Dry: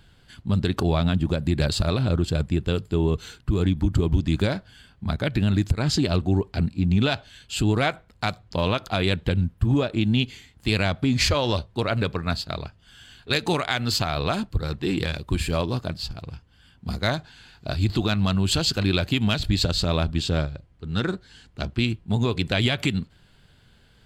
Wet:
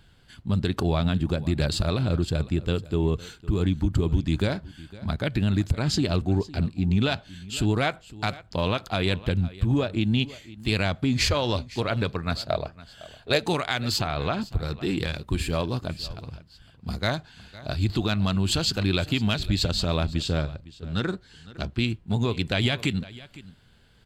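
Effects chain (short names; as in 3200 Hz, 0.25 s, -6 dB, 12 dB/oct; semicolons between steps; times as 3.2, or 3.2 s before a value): 12.37–13.43 bell 620 Hz +12.5 dB 0.73 oct; 14.01–14.45 LPF 3700 Hz 12 dB/oct; echo 0.508 s -19 dB; gain -2 dB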